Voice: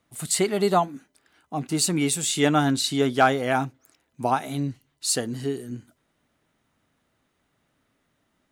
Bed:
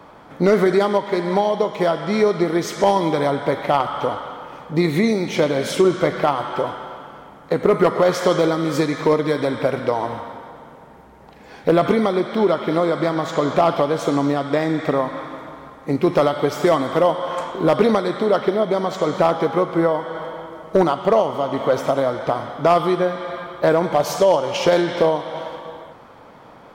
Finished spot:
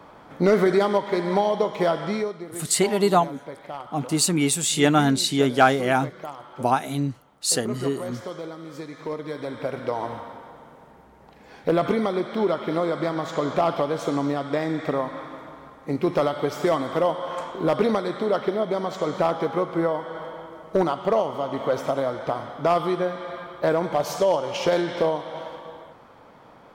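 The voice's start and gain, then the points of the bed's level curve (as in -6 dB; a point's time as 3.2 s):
2.40 s, +2.0 dB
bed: 2.06 s -3 dB
2.4 s -17.5 dB
8.77 s -17.5 dB
10.03 s -5.5 dB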